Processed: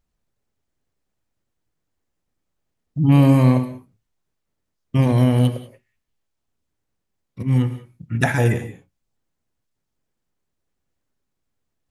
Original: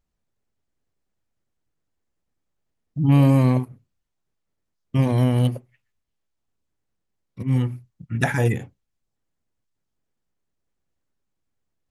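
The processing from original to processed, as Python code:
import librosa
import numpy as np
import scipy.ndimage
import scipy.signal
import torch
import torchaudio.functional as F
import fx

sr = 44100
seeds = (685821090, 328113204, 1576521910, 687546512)

y = fx.rev_gated(x, sr, seeds[0], gate_ms=220, shape='flat', drr_db=10.0)
y = y * librosa.db_to_amplitude(2.5)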